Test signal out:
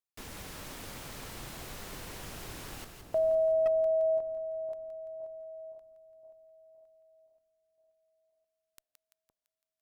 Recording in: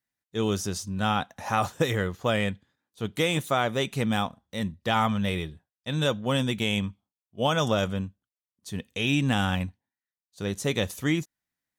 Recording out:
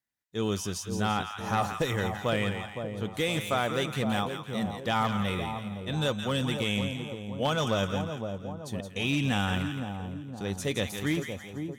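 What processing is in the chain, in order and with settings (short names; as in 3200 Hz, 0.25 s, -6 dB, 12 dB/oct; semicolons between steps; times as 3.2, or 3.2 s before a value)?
split-band echo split 1000 Hz, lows 0.515 s, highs 0.169 s, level -7 dB; one-sided clip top -19.5 dBFS; gain -3 dB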